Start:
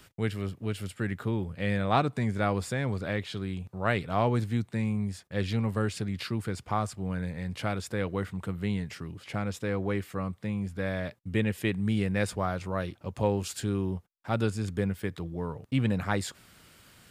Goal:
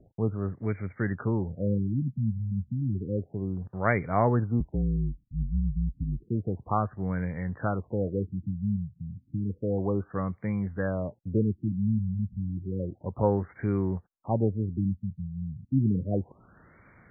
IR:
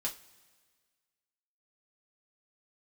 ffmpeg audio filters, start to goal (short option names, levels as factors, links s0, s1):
-filter_complex "[0:a]asettb=1/sr,asplit=3[s0][s1][s2];[s0]atrim=end=4.604[s3];[s1]atrim=start=4.6:end=6.23,asetpts=PTS-STARTPTS,afade=t=in:d=0.004:c=qsin,afade=t=out:st=1.626:d=0.004:c=qsin,afreqshift=-46[s4];[s2]atrim=start=6.226[s5];[s3][s4]acrossfade=d=0.004:c1=hsin:c2=qsin[s6];[s6][s5]acrossfade=d=0.004:c1=qsin:c2=hsin,afftfilt=real='re*lt(b*sr/1024,210*pow(2400/210,0.5+0.5*sin(2*PI*0.31*pts/sr)))':imag='im*lt(b*sr/1024,210*pow(2400/210,0.5+0.5*sin(2*PI*0.31*pts/sr)))':win_size=1024:overlap=0.75,volume=1.33"